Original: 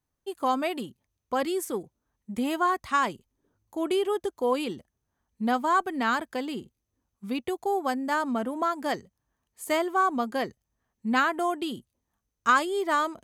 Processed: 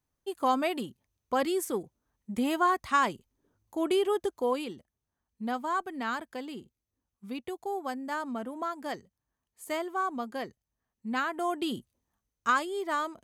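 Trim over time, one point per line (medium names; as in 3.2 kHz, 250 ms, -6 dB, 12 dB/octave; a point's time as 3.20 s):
4.33 s -0.5 dB
4.73 s -7 dB
11.25 s -7 dB
11.75 s +1.5 dB
12.64 s -5.5 dB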